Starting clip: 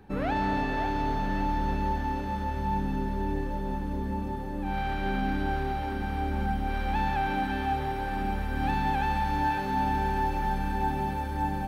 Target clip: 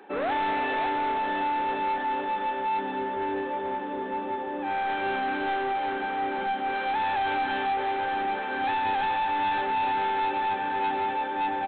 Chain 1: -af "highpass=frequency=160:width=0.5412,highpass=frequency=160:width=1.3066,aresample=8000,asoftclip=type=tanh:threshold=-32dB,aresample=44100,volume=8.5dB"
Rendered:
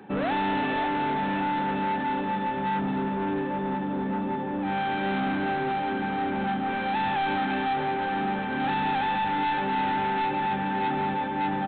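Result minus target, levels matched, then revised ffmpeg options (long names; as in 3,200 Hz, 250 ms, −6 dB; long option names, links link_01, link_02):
125 Hz band +14.0 dB
-af "highpass=frequency=340:width=0.5412,highpass=frequency=340:width=1.3066,aresample=8000,asoftclip=type=tanh:threshold=-32dB,aresample=44100,volume=8.5dB"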